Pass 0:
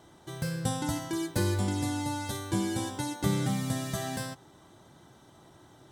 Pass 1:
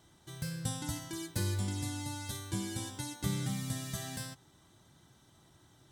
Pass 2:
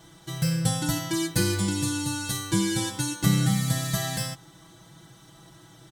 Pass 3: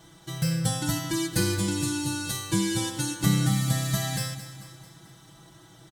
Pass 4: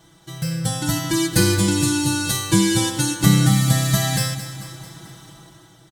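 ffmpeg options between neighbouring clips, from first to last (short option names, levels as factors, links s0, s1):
-af "equalizer=f=570:t=o:w=3:g=-10,volume=0.794"
-af "aecho=1:1:6.1:0.88,volume=2.82"
-af "aecho=1:1:221|442|663|884|1105:0.224|0.119|0.0629|0.0333|0.0177,volume=0.891"
-af "dynaudnorm=f=250:g=7:m=3.76"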